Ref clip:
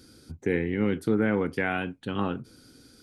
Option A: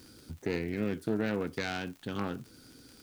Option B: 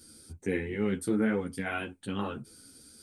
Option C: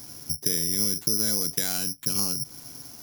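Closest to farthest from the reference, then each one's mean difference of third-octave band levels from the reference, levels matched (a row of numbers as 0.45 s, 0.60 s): B, A, C; 3.0 dB, 6.5 dB, 13.5 dB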